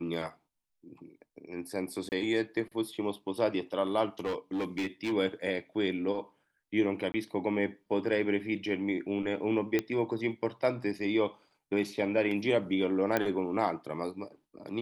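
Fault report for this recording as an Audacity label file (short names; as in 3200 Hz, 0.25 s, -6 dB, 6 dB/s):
2.090000	2.120000	gap 29 ms
4.190000	5.130000	clipped -28.5 dBFS
7.120000	7.140000	gap 20 ms
9.790000	9.790000	pop -15 dBFS
13.170000	13.170000	pop -13 dBFS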